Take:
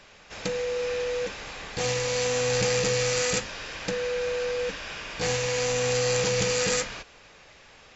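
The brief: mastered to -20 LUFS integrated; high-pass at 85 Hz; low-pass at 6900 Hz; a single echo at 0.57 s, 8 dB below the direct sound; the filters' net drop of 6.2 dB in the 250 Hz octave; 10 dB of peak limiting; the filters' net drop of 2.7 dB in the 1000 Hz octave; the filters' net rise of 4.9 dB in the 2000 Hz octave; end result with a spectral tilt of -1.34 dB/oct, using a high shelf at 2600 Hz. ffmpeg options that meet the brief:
-af "highpass=85,lowpass=6.9k,equalizer=f=250:t=o:g=-9,equalizer=f=1k:t=o:g=-5.5,equalizer=f=2k:t=o:g=6,highshelf=f=2.6k:g=3,alimiter=limit=-19.5dB:level=0:latency=1,aecho=1:1:570:0.398,volume=8.5dB"

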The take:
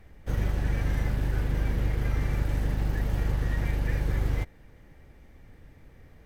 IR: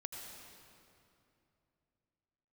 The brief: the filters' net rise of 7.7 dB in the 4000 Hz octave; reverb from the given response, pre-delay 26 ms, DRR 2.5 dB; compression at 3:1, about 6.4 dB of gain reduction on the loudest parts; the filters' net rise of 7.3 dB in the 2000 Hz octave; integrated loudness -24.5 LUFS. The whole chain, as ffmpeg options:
-filter_complex "[0:a]equalizer=f=2k:t=o:g=7,equalizer=f=4k:t=o:g=7.5,acompressor=threshold=-30dB:ratio=3,asplit=2[a][b];[1:a]atrim=start_sample=2205,adelay=26[c];[b][c]afir=irnorm=-1:irlink=0,volume=-0.5dB[d];[a][d]amix=inputs=2:normalize=0,volume=10.5dB"

